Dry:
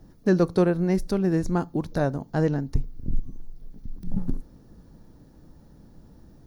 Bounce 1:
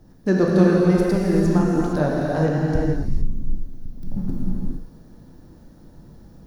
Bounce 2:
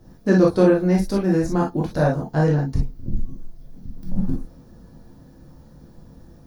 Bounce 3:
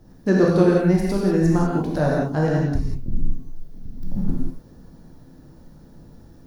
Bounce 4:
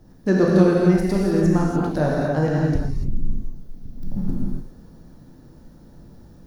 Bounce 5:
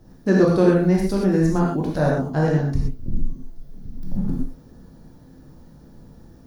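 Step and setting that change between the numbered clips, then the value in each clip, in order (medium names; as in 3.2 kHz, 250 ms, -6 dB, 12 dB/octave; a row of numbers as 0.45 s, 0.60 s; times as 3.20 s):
gated-style reverb, gate: 490 ms, 80 ms, 220 ms, 320 ms, 150 ms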